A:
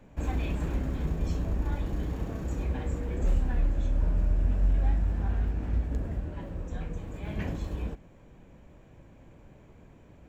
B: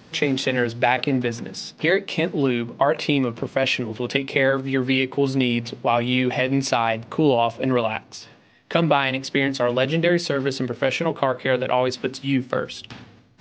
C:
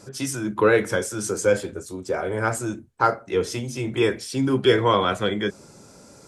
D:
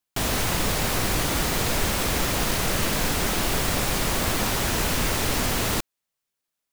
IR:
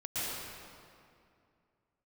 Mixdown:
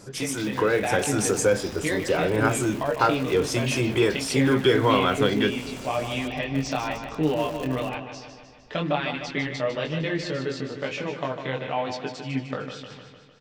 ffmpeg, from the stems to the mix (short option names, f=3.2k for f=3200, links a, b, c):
-filter_complex "[0:a]aecho=1:1:3.7:0.37,acontrast=36,aeval=exprs='(mod(15.8*val(0)+1,2)-1)/15.8':c=same,volume=-18.5dB[a];[1:a]aecho=1:1:6.7:0.45,flanger=delay=19.5:depth=4:speed=1.1,volume=-10.5dB,asplit=2[b][c];[c]volume=-8.5dB[d];[2:a]acompressor=threshold=-27dB:ratio=2,volume=0dB[e];[d]aecho=0:1:152|304|456|608|760|912|1064|1216|1368:1|0.58|0.336|0.195|0.113|0.0656|0.0381|0.0221|0.0128[f];[a][b][e][f]amix=inputs=4:normalize=0,dynaudnorm=f=170:g=9:m=5dB"